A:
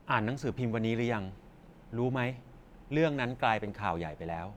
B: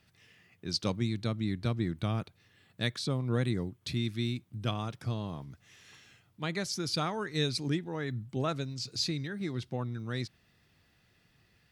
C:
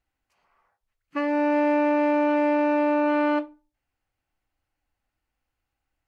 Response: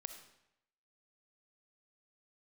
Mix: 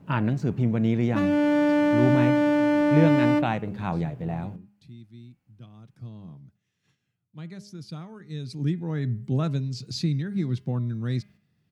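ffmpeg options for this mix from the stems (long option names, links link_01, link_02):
-filter_complex "[0:a]volume=-1.5dB[link_01];[1:a]agate=range=-9dB:threshold=-55dB:ratio=16:detection=peak,adelay=950,volume=-2.5dB,afade=type=in:start_time=5.69:duration=0.53:silence=0.375837,afade=type=in:start_time=8.39:duration=0.49:silence=0.237137[link_02];[2:a]aeval=exprs='clip(val(0),-1,0.0251)':channel_layout=same,volume=-1dB[link_03];[link_01][link_02][link_03]amix=inputs=3:normalize=0,highpass=58,equalizer=frequency=160:width_type=o:width=1.9:gain=14.5,bandreject=frequency=204.1:width_type=h:width=4,bandreject=frequency=408.2:width_type=h:width=4,bandreject=frequency=612.3:width_type=h:width=4,bandreject=frequency=816.4:width_type=h:width=4,bandreject=frequency=1020.5:width_type=h:width=4,bandreject=frequency=1224.6:width_type=h:width=4,bandreject=frequency=1428.7:width_type=h:width=4,bandreject=frequency=1632.8:width_type=h:width=4,bandreject=frequency=1836.9:width_type=h:width=4,bandreject=frequency=2041:width_type=h:width=4,bandreject=frequency=2245.1:width_type=h:width=4,bandreject=frequency=2449.2:width_type=h:width=4,bandreject=frequency=2653.3:width_type=h:width=4,bandreject=frequency=2857.4:width_type=h:width=4,bandreject=frequency=3061.5:width_type=h:width=4"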